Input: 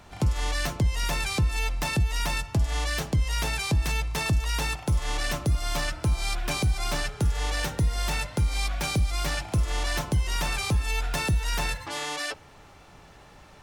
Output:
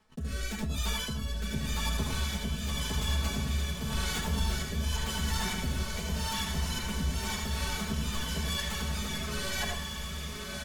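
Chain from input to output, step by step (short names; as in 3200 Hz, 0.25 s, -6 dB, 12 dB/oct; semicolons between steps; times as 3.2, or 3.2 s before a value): chorus voices 2, 1.5 Hz, delay 13 ms, depth 3 ms; comb 6 ms, depth 75%; reverse; compressor 10:1, threshold -36 dBFS, peak gain reduction 16 dB; reverse; varispeed +28%; gate -48 dBFS, range -54 dB; rotary speaker horn 0.9 Hz; diffused feedback echo 1.253 s, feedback 42%, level -3 dB; reverb RT60 0.25 s, pre-delay 69 ms, DRR 3 dB; backwards sustainer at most 150 dB/s; gain +5 dB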